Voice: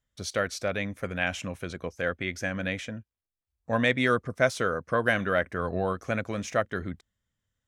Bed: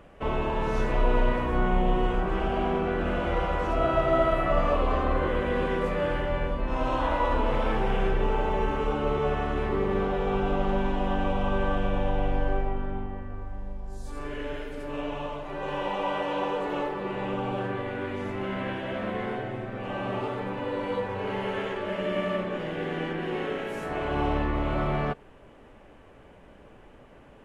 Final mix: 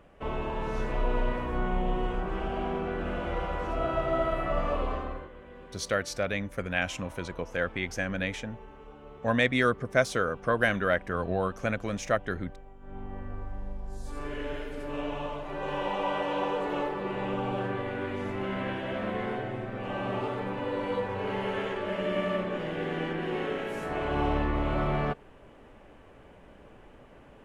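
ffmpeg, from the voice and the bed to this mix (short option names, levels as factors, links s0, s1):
-filter_complex "[0:a]adelay=5550,volume=0.944[s0];[1:a]volume=5.96,afade=t=out:st=4.83:d=0.46:silence=0.149624,afade=t=in:st=12.8:d=0.47:silence=0.0944061[s1];[s0][s1]amix=inputs=2:normalize=0"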